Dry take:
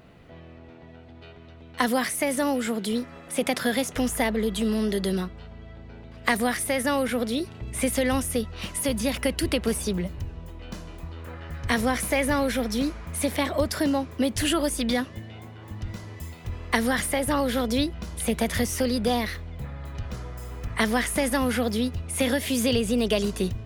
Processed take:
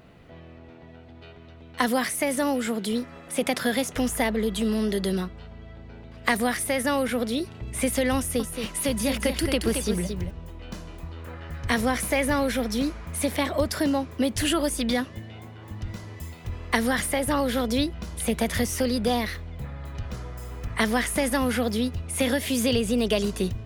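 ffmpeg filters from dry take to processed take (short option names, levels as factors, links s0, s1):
-filter_complex "[0:a]asettb=1/sr,asplit=3[s0][s1][s2];[s0]atrim=end=8.174[s3];[s1]atrim=start=8.17:end=10.31,asetpts=PTS-STARTPTS,afade=t=in:d=0.004:c=qsin,afade=t=out:st=2.136:d=0.004:c=qsin,aecho=1:1:224:0.473,atrim=end_sample=94374[s4];[s2]atrim=start=10.306[s5];[s3][s4]acrossfade=d=0.004:c1=hsin:c2=qsin[s6];[s6][s5]acrossfade=d=0.004:c1=qsin:c2=hsin"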